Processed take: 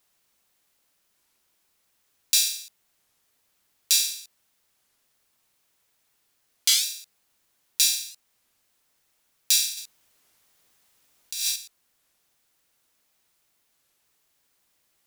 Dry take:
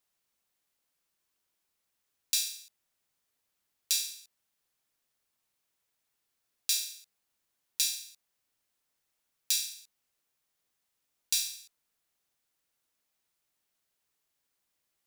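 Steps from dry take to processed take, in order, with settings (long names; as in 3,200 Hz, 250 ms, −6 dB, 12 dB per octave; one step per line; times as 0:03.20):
in parallel at +1 dB: brickwall limiter −18.5 dBFS, peak gain reduction 11 dB
0:09.77–0:11.56: on the sum: compressor whose output falls as the input rises −32 dBFS, ratio −1
wow of a warped record 33 1/3 rpm, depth 250 cents
level +4 dB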